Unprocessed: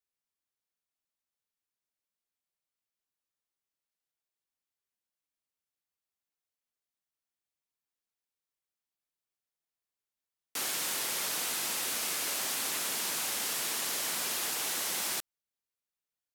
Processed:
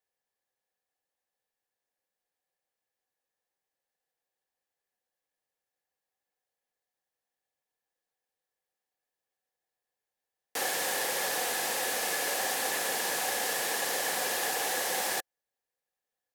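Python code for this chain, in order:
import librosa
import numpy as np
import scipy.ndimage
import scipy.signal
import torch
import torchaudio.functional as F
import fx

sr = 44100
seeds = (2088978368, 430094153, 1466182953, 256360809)

y = fx.small_body(x, sr, hz=(520.0, 750.0, 1700.0), ring_ms=25, db=14)
y = fx.clip_hard(y, sr, threshold_db=-23.5, at=(11.05, 12.06))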